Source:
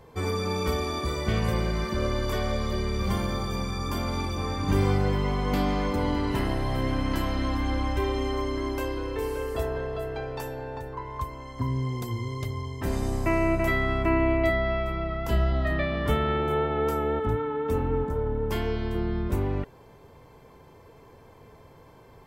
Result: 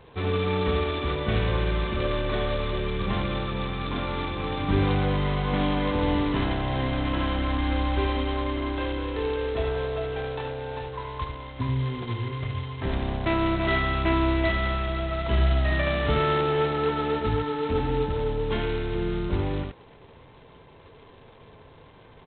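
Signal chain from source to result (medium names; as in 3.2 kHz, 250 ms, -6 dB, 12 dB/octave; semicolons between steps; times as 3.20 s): delay 75 ms -5.5 dB; G.726 16 kbps 8 kHz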